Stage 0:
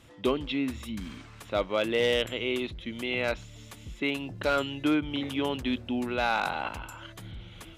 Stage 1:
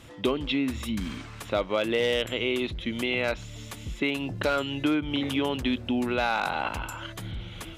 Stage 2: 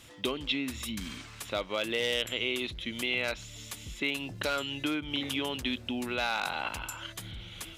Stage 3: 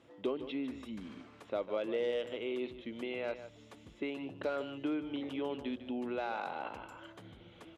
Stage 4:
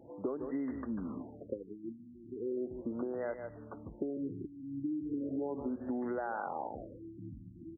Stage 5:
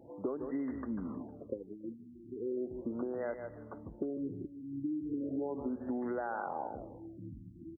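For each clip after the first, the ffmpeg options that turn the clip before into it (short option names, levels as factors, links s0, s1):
-af "acompressor=threshold=0.0282:ratio=2.5,volume=2.11"
-af "highshelf=f=2100:g=11.5,volume=0.398"
-af "bandpass=f=440:t=q:w=1:csg=0,aecho=1:1:151:0.251"
-af "acompressor=threshold=0.00891:ratio=6,afftfilt=real='re*lt(b*sr/1024,330*pow(2100/330,0.5+0.5*sin(2*PI*0.37*pts/sr)))':imag='im*lt(b*sr/1024,330*pow(2100/330,0.5+0.5*sin(2*PI*0.37*pts/sr)))':win_size=1024:overlap=0.75,volume=2.51"
-af "aecho=1:1:313:0.0891"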